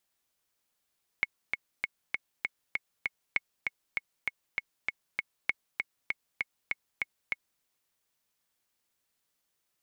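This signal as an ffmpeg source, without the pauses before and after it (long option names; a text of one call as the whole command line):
ffmpeg -f lavfi -i "aevalsrc='pow(10,(-12.5-4*gte(mod(t,7*60/197),60/197))/20)*sin(2*PI*2190*mod(t,60/197))*exp(-6.91*mod(t,60/197)/0.03)':duration=6.39:sample_rate=44100" out.wav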